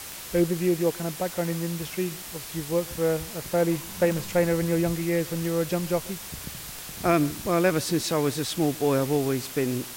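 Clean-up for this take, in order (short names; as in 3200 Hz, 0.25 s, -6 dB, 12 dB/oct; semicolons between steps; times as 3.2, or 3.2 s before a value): de-click; noise print and reduce 30 dB; inverse comb 0.136 s -23 dB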